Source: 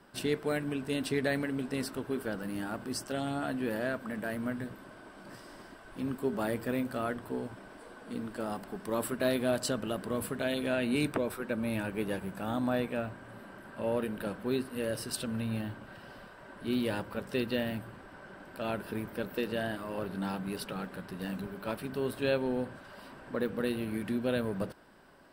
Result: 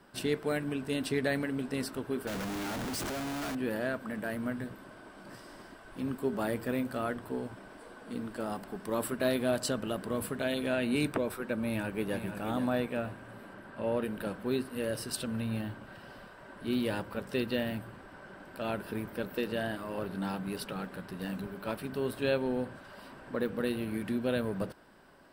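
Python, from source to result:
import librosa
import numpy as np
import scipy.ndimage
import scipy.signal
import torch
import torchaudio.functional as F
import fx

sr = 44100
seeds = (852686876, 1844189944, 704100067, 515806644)

y = fx.schmitt(x, sr, flips_db=-50.5, at=(2.27, 3.55))
y = fx.echo_throw(y, sr, start_s=11.65, length_s=0.54, ms=480, feedback_pct=35, wet_db=-8.5)
y = fx.high_shelf(y, sr, hz=fx.line((13.53, 7100.0), (14.03, 10000.0)), db=-9.0, at=(13.53, 14.03), fade=0.02)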